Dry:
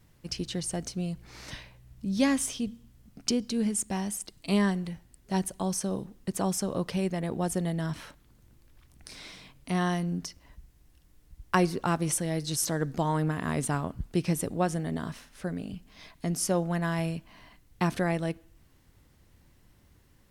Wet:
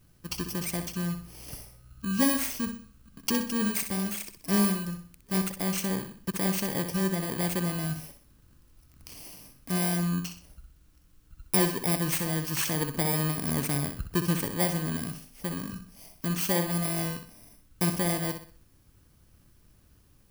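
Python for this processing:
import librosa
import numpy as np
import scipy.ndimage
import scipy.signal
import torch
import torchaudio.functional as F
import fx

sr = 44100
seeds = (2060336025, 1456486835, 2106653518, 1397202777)

y = fx.bit_reversed(x, sr, seeds[0], block=32)
y = fx.room_flutter(y, sr, wall_m=10.8, rt60_s=0.44)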